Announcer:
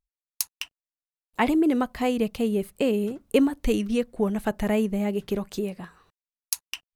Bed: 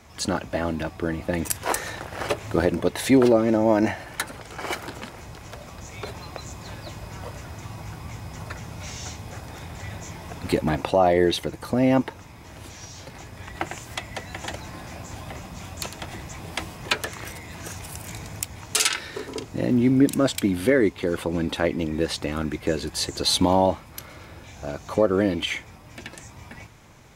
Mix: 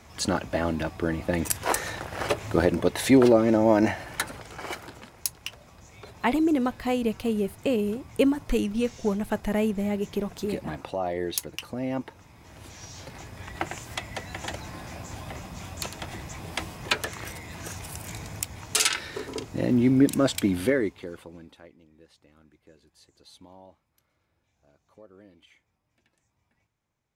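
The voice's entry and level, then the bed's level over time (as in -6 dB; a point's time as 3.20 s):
4.85 s, -1.5 dB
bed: 4.25 s -0.5 dB
5.19 s -11 dB
11.91 s -11 dB
12.99 s -1.5 dB
20.61 s -1.5 dB
21.81 s -31 dB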